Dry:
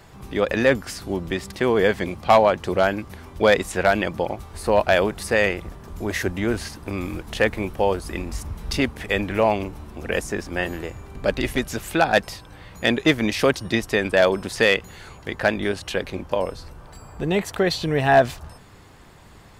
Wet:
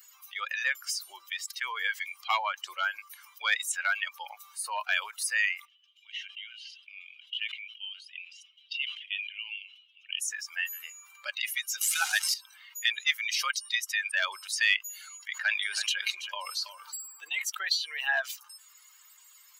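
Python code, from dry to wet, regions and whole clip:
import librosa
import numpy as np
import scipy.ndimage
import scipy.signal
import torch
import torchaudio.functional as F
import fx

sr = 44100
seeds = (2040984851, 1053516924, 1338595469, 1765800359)

y = fx.chain(x, sr, fx.bandpass_q(hz=3000.0, q=4.1),
    fx.sustainer(db_per_s=82.0), at=(5.65, 10.2))
y = fx.chain(y, sr, fx.delta_mod(bps=64000, step_db=-19.5),
    fx.highpass(hz=510.0, slope=12), at=(11.81, 12.34))
y = fx.chain(y, sr, fx.echo_single(ms=327, db=-13.5),
    fx.sustainer(db_per_s=29.0), at=(14.98, 17.42))
y = fx.bin_expand(y, sr, power=2.0)
y = scipy.signal.sosfilt(scipy.signal.bessel(6, 1800.0, 'highpass', norm='mag', fs=sr, output='sos'), y)
y = fx.env_flatten(y, sr, amount_pct=50)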